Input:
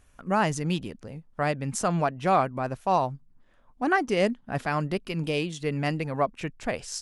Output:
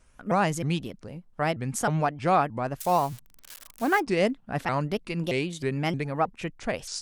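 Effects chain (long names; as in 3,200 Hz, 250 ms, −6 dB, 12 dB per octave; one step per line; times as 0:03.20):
0:02.81–0:04.00: spike at every zero crossing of −29 dBFS
pitch modulation by a square or saw wave saw up 3.2 Hz, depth 250 cents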